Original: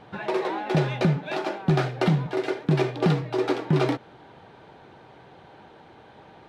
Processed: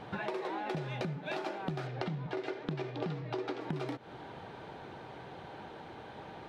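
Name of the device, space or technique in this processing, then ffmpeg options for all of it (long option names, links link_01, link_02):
serial compression, peaks first: -filter_complex "[0:a]acompressor=threshold=-30dB:ratio=6,acompressor=threshold=-40dB:ratio=2,asettb=1/sr,asplit=3[link_01][link_02][link_03];[link_01]atrim=end=1.874[link_04];[link_02]atrim=start=1.87:end=3.61,asetpts=PTS-STARTPTS,afade=type=in:duration=0.004:curve=qsin,afade=type=out:start_time=1.736:duration=0.004:curve=qsin,lowpass=5600[link_05];[link_03]atrim=start=3.606[link_06];[link_04][link_05]acrossfade=duration=0.004:curve1=hsin:curve2=qsin[link_07];[link_07][link_06]acrossfade=duration=0.004:curve1=qsin:curve2=hsin,volume=2dB"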